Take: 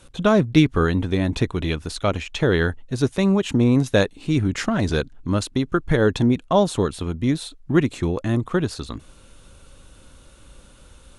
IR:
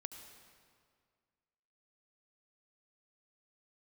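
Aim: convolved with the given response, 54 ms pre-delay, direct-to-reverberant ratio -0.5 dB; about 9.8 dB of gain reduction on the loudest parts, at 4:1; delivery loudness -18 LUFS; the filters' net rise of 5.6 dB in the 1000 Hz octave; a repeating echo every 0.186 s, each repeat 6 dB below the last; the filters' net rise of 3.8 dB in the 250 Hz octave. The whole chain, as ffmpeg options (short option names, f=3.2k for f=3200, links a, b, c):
-filter_complex "[0:a]equalizer=f=250:t=o:g=4.5,equalizer=f=1k:t=o:g=7,acompressor=threshold=-18dB:ratio=4,aecho=1:1:186|372|558|744|930|1116:0.501|0.251|0.125|0.0626|0.0313|0.0157,asplit=2[a][b];[1:a]atrim=start_sample=2205,adelay=54[c];[b][c]afir=irnorm=-1:irlink=0,volume=4dB[d];[a][d]amix=inputs=2:normalize=0,volume=1.5dB"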